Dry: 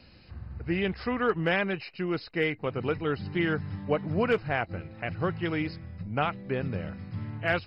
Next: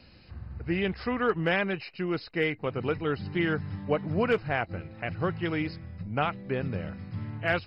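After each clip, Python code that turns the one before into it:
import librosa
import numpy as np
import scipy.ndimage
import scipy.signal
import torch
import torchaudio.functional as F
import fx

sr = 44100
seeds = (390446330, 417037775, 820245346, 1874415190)

y = x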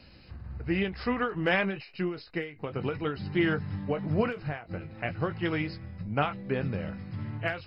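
y = fx.chorus_voices(x, sr, voices=6, hz=0.92, base_ms=18, depth_ms=3.9, mix_pct=25)
y = fx.end_taper(y, sr, db_per_s=130.0)
y = y * 10.0 ** (3.0 / 20.0)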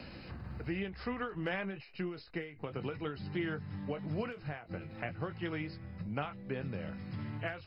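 y = fx.band_squash(x, sr, depth_pct=70)
y = y * 10.0 ** (-8.5 / 20.0)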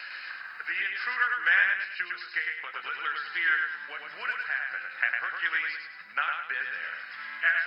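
y = fx.highpass_res(x, sr, hz=1600.0, q=4.7)
y = fx.echo_feedback(y, sr, ms=105, feedback_pct=39, wet_db=-4.0)
y = y * 10.0 ** (7.0 / 20.0)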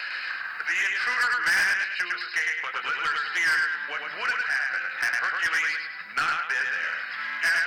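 y = 10.0 ** (-27.5 / 20.0) * np.tanh(x / 10.0 ** (-27.5 / 20.0))
y = y * 10.0 ** (8.0 / 20.0)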